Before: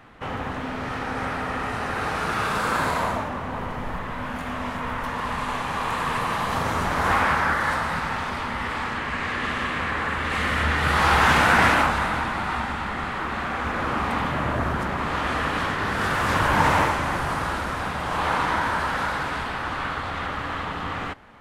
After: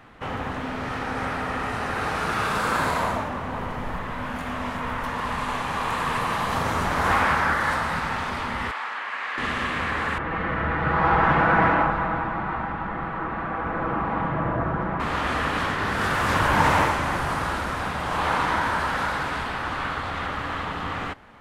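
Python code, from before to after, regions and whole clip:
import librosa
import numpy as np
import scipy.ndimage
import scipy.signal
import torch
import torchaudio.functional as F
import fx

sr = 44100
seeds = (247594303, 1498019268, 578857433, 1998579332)

y = fx.chain(x, sr, fx.highpass(hz=820.0, slope=12),
    fx.peak_eq(hz=11000.0, db=-10.0, octaves=2.2), at=(8.71, 9.38))
y = fx.chain(y, sr, fx.lowpass(hz=1400.0, slope=12),
    fx.comb(ms=6.1, depth=0.49), at=(10.18, 15.0))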